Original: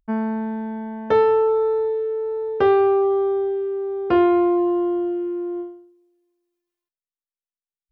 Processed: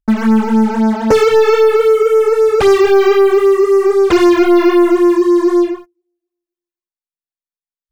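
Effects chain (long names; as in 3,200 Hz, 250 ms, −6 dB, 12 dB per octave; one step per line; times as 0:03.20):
leveller curve on the samples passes 5
all-pass phaser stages 12, 3.8 Hz, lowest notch 170–3,500 Hz
level +2.5 dB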